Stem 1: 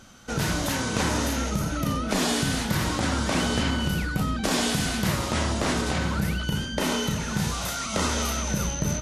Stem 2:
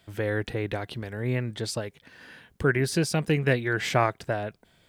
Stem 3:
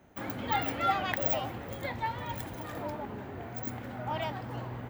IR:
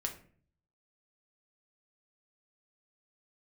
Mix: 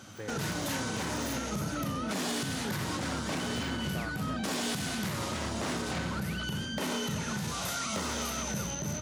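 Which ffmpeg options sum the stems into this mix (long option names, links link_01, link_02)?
-filter_complex "[0:a]volume=22dB,asoftclip=hard,volume=-22dB,volume=0.5dB[link_01];[1:a]volume=-13.5dB[link_02];[2:a]volume=-18dB[link_03];[link_01][link_02][link_03]amix=inputs=3:normalize=0,highpass=frequency=82:width=0.5412,highpass=frequency=82:width=1.3066,alimiter=limit=-24dB:level=0:latency=1:release=396"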